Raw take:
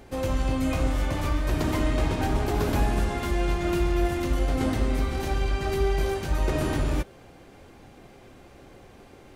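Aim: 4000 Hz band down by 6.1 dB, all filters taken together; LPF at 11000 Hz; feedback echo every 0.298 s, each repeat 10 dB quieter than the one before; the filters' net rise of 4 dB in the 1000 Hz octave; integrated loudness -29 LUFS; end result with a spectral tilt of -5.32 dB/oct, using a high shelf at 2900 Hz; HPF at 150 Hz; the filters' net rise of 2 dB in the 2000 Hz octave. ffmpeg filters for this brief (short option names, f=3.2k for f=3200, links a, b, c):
-af "highpass=150,lowpass=11k,equalizer=f=1k:t=o:g=5.5,equalizer=f=2k:t=o:g=4,highshelf=f=2.9k:g=-5.5,equalizer=f=4k:t=o:g=-6,aecho=1:1:298|596|894|1192:0.316|0.101|0.0324|0.0104,volume=-1.5dB"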